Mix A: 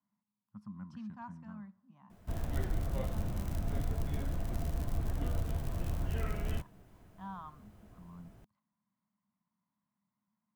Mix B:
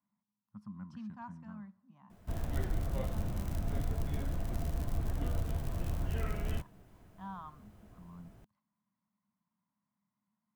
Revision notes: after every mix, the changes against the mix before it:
nothing changed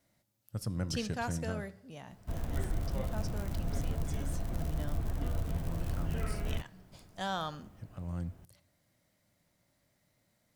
speech: remove pair of resonant band-passes 460 Hz, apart 2.3 octaves
reverb: on, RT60 0.80 s

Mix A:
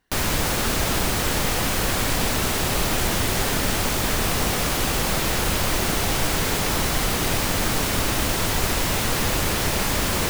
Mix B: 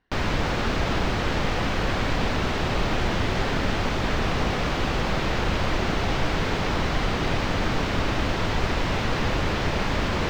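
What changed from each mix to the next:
master: add high-frequency loss of the air 200 metres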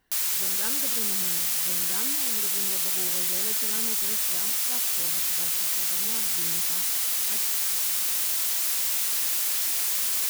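background: add first difference
master: remove high-frequency loss of the air 200 metres

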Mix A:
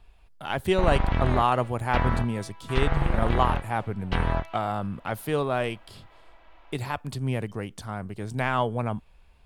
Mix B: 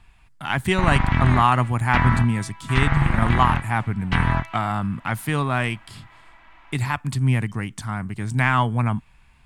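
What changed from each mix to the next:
master: add octave-band graphic EQ 125/250/500/1,000/2,000/8,000 Hz +9/+6/−9/+6/+9/+9 dB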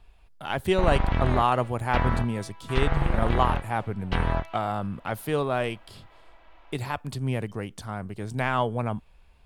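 master: add octave-band graphic EQ 125/250/500/1,000/2,000/8,000 Hz −9/−6/+9/−6/−9/−9 dB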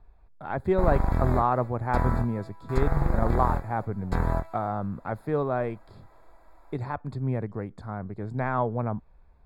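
background: remove low-pass filter 3,400 Hz 24 dB per octave
master: add moving average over 15 samples

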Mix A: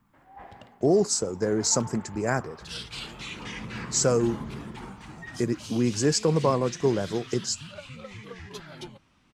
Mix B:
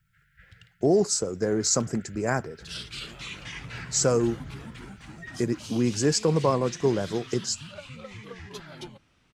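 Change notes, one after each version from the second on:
first sound: add linear-phase brick-wall band-stop 180–1,300 Hz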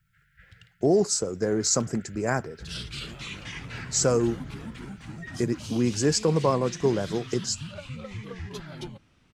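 second sound: add low-shelf EQ 230 Hz +9 dB

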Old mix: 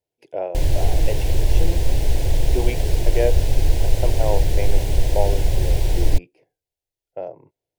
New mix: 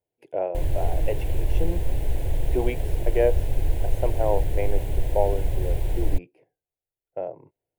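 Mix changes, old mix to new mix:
background −6.0 dB
master: add parametric band 5,200 Hz −13.5 dB 1.1 octaves

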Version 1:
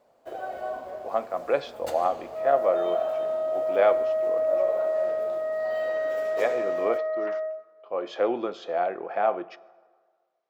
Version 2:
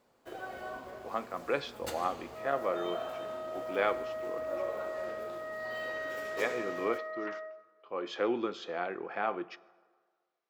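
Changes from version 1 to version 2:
first sound: send on
master: add parametric band 640 Hz −13.5 dB 0.77 octaves

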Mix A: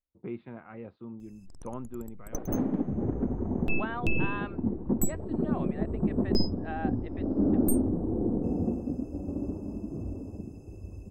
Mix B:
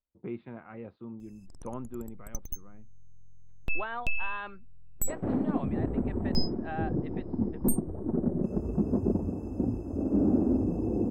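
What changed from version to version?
second sound: entry +2.75 s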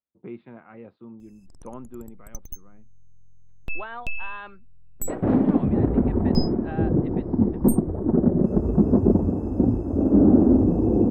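speech: add high-pass filter 120 Hz
second sound +9.5 dB

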